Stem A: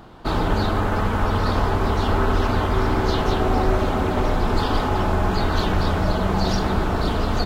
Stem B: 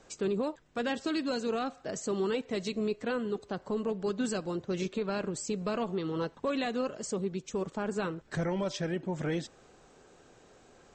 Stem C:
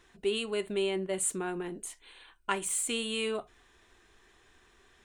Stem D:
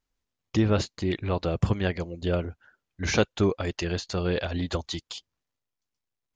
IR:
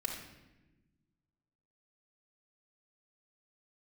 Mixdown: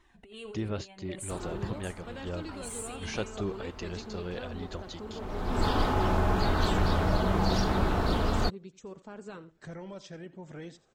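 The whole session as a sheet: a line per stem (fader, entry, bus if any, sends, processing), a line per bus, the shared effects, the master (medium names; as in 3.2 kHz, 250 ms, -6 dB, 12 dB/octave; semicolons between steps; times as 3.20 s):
-5.5 dB, 1.05 s, no send, no echo send, auto duck -21 dB, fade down 1.95 s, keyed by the third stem
-11.0 dB, 1.30 s, no send, echo send -18 dB, none
-1.5 dB, 0.00 s, no send, echo send -14 dB, treble shelf 3.2 kHz -8 dB; compressor with a negative ratio -38 dBFS, ratio -1; Shepard-style flanger falling 1.3 Hz
-11.0 dB, 0.00 s, no send, no echo send, none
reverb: none
echo: delay 86 ms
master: none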